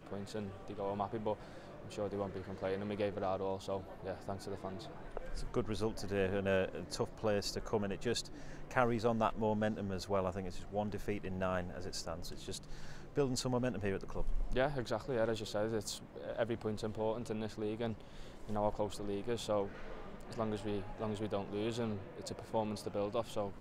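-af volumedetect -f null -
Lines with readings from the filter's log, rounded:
mean_volume: -37.8 dB
max_volume: -14.7 dB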